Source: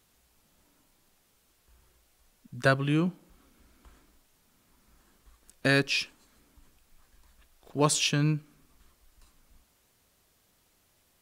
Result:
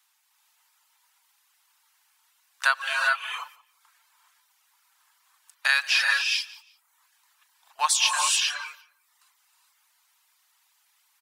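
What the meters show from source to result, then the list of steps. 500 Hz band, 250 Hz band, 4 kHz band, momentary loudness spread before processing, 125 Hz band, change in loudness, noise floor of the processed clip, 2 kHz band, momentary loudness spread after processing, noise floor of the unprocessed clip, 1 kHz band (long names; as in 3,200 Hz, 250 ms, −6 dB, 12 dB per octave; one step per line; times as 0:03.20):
−13.5 dB, below −40 dB, +8.0 dB, 10 LU, below −40 dB, +3.5 dB, −69 dBFS, +8.5 dB, 14 LU, −69 dBFS, +7.5 dB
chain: elliptic high-pass filter 860 Hz, stop band 60 dB
reverb whose tail is shaped and stops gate 450 ms rising, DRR −1 dB
noise gate −55 dBFS, range −9 dB
reverb reduction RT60 0.66 s
repeating echo 176 ms, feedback 20%, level −23 dB
in parallel at +1 dB: downward compressor, threshold −39 dBFS, peak gain reduction 15.5 dB
on the sum: level +4 dB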